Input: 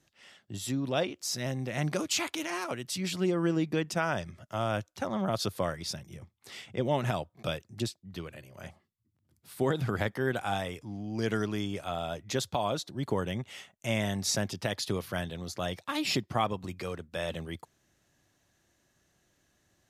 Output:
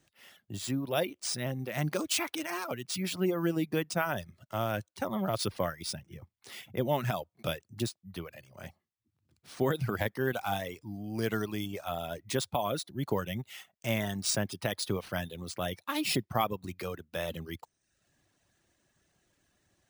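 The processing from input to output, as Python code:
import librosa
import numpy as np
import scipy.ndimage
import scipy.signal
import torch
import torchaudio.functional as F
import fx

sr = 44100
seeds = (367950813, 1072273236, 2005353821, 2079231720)

y = fx.dereverb_blind(x, sr, rt60_s=0.69)
y = np.repeat(y[::3], 3)[:len(y)]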